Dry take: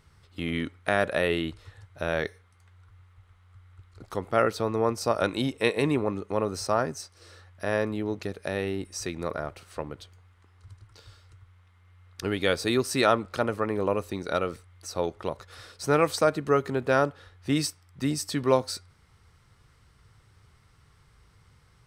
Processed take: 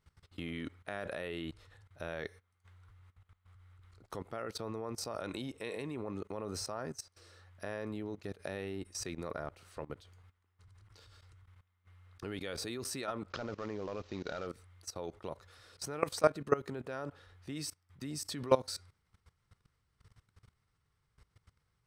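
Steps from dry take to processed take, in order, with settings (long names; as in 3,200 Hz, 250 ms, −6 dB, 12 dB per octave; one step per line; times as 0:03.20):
0:13.30–0:14.47: variable-slope delta modulation 32 kbit/s
output level in coarse steps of 19 dB
level −2 dB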